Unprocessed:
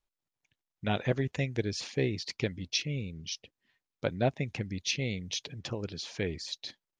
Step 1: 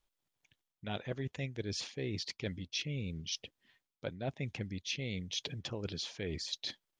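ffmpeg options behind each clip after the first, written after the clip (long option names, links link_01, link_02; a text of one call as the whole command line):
ffmpeg -i in.wav -af "equalizer=frequency=3300:width_type=o:width=0.24:gain=4.5,areverse,acompressor=threshold=-39dB:ratio=6,areverse,volume=3.5dB" out.wav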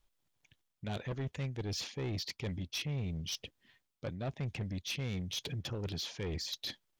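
ffmpeg -i in.wav -af "lowshelf=frequency=160:gain=6.5,asoftclip=type=tanh:threshold=-34.5dB,volume=2.5dB" out.wav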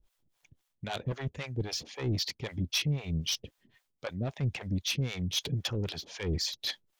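ffmpeg -i in.wav -filter_complex "[0:a]acrossover=split=510[link_01][link_02];[link_01]aeval=exprs='val(0)*(1-1/2+1/2*cos(2*PI*3.8*n/s))':channel_layout=same[link_03];[link_02]aeval=exprs='val(0)*(1-1/2-1/2*cos(2*PI*3.8*n/s))':channel_layout=same[link_04];[link_03][link_04]amix=inputs=2:normalize=0,volume=9dB" out.wav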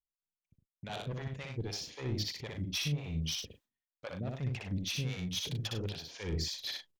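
ffmpeg -i in.wav -af "agate=range=-27dB:threshold=-57dB:ratio=16:detection=peak,aecho=1:1:61.22|99.13:0.708|0.316,volume=-6dB" out.wav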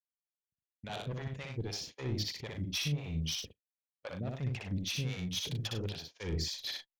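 ffmpeg -i in.wav -af "agate=range=-29dB:threshold=-46dB:ratio=16:detection=peak" out.wav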